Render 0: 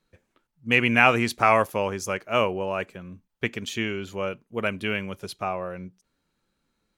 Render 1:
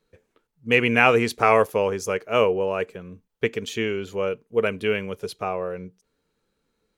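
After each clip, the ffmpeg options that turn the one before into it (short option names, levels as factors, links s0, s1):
-af "equalizer=f=450:t=o:w=0.29:g=12.5"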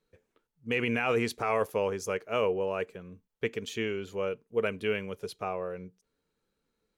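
-af "alimiter=limit=0.282:level=0:latency=1:release=13,volume=0.473"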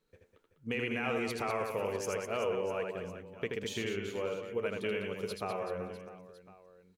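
-filter_complex "[0:a]acompressor=threshold=0.0178:ratio=2.5,asplit=2[s0][s1];[s1]aecho=0:1:80|200|380|650|1055:0.631|0.398|0.251|0.158|0.1[s2];[s0][s2]amix=inputs=2:normalize=0"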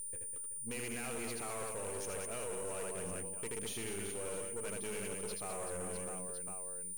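-af "areverse,acompressor=threshold=0.00708:ratio=5,areverse,aeval=exprs='val(0)+0.00447*sin(2*PI*9200*n/s)':c=same,aeval=exprs='(tanh(251*val(0)+0.7)-tanh(0.7))/251':c=same,volume=3.16"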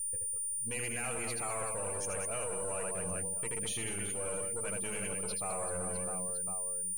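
-af "aeval=exprs='if(lt(val(0),0),0.708*val(0),val(0))':c=same,afftdn=nr=14:nf=-54,equalizer=f=250:t=o:w=0.33:g=-9,equalizer=f=400:t=o:w=0.33:g=-10,equalizer=f=8000:t=o:w=0.33:g=4,volume=2.51"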